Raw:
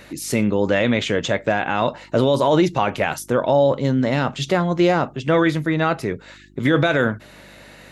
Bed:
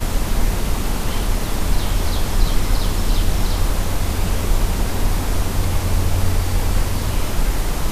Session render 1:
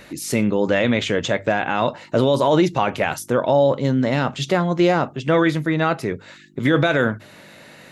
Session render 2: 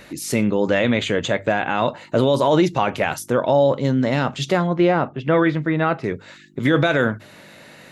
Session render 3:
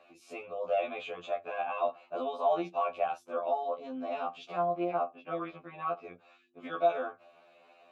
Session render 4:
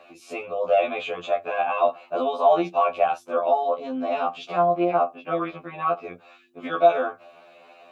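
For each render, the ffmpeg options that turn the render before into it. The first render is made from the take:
-af "bandreject=f=50:t=h:w=4,bandreject=f=100:t=h:w=4"
-filter_complex "[0:a]asettb=1/sr,asplit=3[s0][s1][s2];[s0]atrim=end=0.804[s3];[s1]atrim=start=0.8:end=2.3,asetpts=PTS-STARTPTS,afade=t=in:d=0.004:c=qsin,afade=t=out:st=1.496:d=0.004:c=qsin,bandreject=f=5400:w=5.2[s4];[s2]atrim=start=2.296[s5];[s3][s4]acrossfade=d=0.004:c1=hsin:c2=qsin[s6];[s6][s5]acrossfade=d=0.004:c1=qsin:c2=hsin,asettb=1/sr,asplit=3[s7][s8][s9];[s7]atrim=end=4.674[s10];[s8]atrim=start=4.67:end=6.04,asetpts=PTS-STARTPTS,afade=t=in:d=0.004:c=qsin,afade=t=out:st=1.366:d=0.004:c=qsin,lowpass=2800[s11];[s9]atrim=start=6.036[s12];[s10][s11]acrossfade=d=0.004:c1=hsin:c2=qsin[s13];[s13][s12]acrossfade=d=0.004:c1=qsin:c2=hsin"
-filter_complex "[0:a]asplit=3[s0][s1][s2];[s0]bandpass=f=730:t=q:w=8,volume=1[s3];[s1]bandpass=f=1090:t=q:w=8,volume=0.501[s4];[s2]bandpass=f=2440:t=q:w=8,volume=0.355[s5];[s3][s4][s5]amix=inputs=3:normalize=0,afftfilt=real='re*2*eq(mod(b,4),0)':imag='im*2*eq(mod(b,4),0)':win_size=2048:overlap=0.75"
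-af "volume=3.16"

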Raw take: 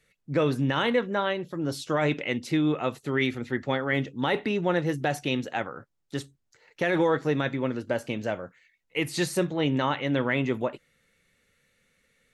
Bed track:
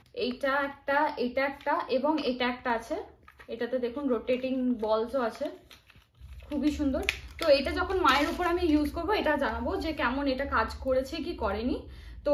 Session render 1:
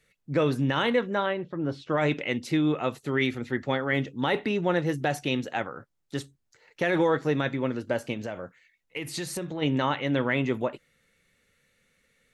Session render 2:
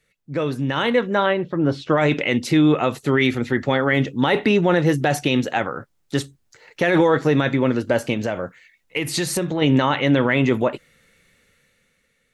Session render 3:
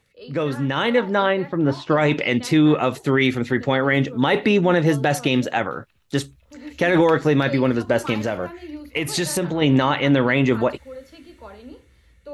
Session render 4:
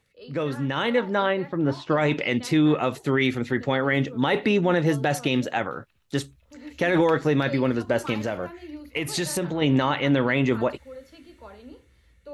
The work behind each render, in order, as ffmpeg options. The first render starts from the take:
-filter_complex "[0:a]asettb=1/sr,asplit=3[s0][s1][s2];[s0]atrim=end=1.264[s3];[s1]atrim=start=1.26:end=1.98,asetpts=PTS-STARTPTS,afade=t=in:d=0.004:c=qsin,afade=t=out:st=0.716:d=0.004:c=qsin,lowpass=2500[s4];[s2]atrim=start=1.976[s5];[s3][s4]acrossfade=d=0.004:c1=hsin:c2=qsin[s6];[s6][s5]acrossfade=d=0.004:c1=qsin:c2=hsin,asplit=3[s7][s8][s9];[s7]afade=t=out:st=8.13:d=0.02[s10];[s8]acompressor=threshold=0.0355:ratio=6:attack=3.2:release=140:knee=1:detection=peak,afade=t=in:st=8.13:d=0.02,afade=t=out:st=9.61:d=0.02[s11];[s9]afade=t=in:st=9.61:d=0.02[s12];[s10][s11][s12]amix=inputs=3:normalize=0"
-af "dynaudnorm=f=230:g=9:m=3.76,alimiter=limit=0.422:level=0:latency=1:release=25"
-filter_complex "[1:a]volume=0.299[s0];[0:a][s0]amix=inputs=2:normalize=0"
-af "volume=0.631"

